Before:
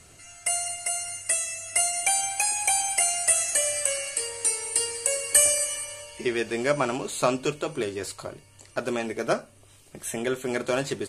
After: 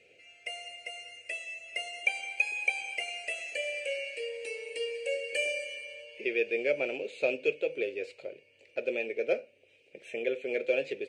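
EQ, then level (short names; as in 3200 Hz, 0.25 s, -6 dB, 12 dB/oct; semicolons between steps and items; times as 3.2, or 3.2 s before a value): double band-pass 1100 Hz, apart 2.3 oct; air absorption 59 m; +5.5 dB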